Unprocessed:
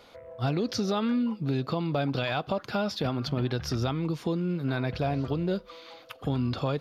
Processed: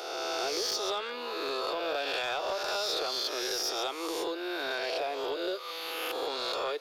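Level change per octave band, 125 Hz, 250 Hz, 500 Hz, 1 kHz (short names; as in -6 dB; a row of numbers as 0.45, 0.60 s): under -35 dB, -13.5 dB, -0.5 dB, +1.0 dB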